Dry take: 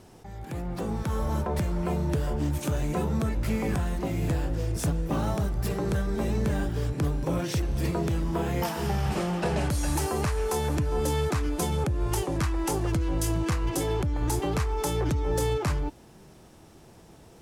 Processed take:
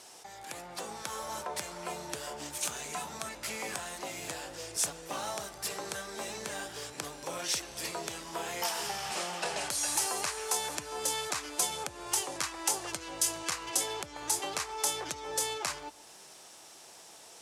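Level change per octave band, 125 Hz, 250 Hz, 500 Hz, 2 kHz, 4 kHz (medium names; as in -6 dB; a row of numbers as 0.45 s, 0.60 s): -26.0 dB, -17.5 dB, -10.0 dB, -0.5 dB, +4.0 dB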